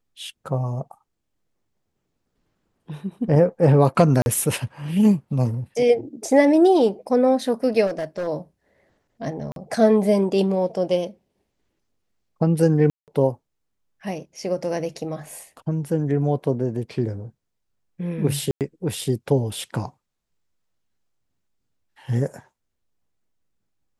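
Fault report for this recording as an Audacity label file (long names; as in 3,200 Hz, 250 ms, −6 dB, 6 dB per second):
4.220000	4.260000	drop-out 41 ms
7.860000	8.280000	clipping −22.5 dBFS
9.520000	9.560000	drop-out 42 ms
12.900000	13.080000	drop-out 178 ms
18.510000	18.610000	drop-out 98 ms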